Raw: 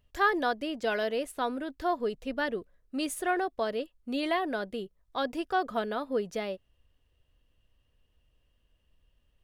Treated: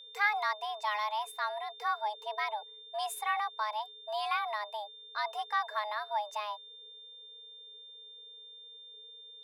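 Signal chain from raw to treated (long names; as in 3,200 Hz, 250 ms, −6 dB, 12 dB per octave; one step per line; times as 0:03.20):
frequency shifter +420 Hz
steady tone 3,600 Hz −45 dBFS
level −3.5 dB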